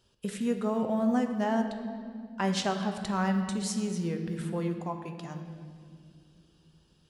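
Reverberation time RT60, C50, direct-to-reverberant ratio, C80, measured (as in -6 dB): 2.2 s, 7.0 dB, 5.0 dB, 8.5 dB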